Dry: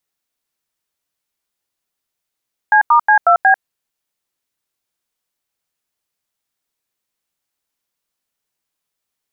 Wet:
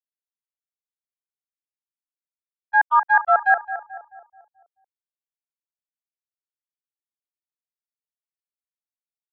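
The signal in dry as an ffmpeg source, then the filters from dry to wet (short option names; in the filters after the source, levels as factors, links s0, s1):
-f lavfi -i "aevalsrc='0.335*clip(min(mod(t,0.182),0.094-mod(t,0.182))/0.002,0,1)*(eq(floor(t/0.182),0)*(sin(2*PI*852*mod(t,0.182))+sin(2*PI*1633*mod(t,0.182)))+eq(floor(t/0.182),1)*(sin(2*PI*941*mod(t,0.182))+sin(2*PI*1209*mod(t,0.182)))+eq(floor(t/0.182),2)*(sin(2*PI*852*mod(t,0.182))+sin(2*PI*1633*mod(t,0.182)))+eq(floor(t/0.182),3)*(sin(2*PI*697*mod(t,0.182))+sin(2*PI*1336*mod(t,0.182)))+eq(floor(t/0.182),4)*(sin(2*PI*770*mod(t,0.182))+sin(2*PI*1633*mod(t,0.182))))':d=0.91:s=44100"
-filter_complex "[0:a]highpass=320,agate=range=0.00355:threshold=0.355:ratio=16:detection=peak,asplit=2[s0][s1];[s1]adelay=217,lowpass=f=1200:p=1,volume=0.316,asplit=2[s2][s3];[s3]adelay=217,lowpass=f=1200:p=1,volume=0.53,asplit=2[s4][s5];[s5]adelay=217,lowpass=f=1200:p=1,volume=0.53,asplit=2[s6][s7];[s7]adelay=217,lowpass=f=1200:p=1,volume=0.53,asplit=2[s8][s9];[s9]adelay=217,lowpass=f=1200:p=1,volume=0.53,asplit=2[s10][s11];[s11]adelay=217,lowpass=f=1200:p=1,volume=0.53[s12];[s0][s2][s4][s6][s8][s10][s12]amix=inputs=7:normalize=0"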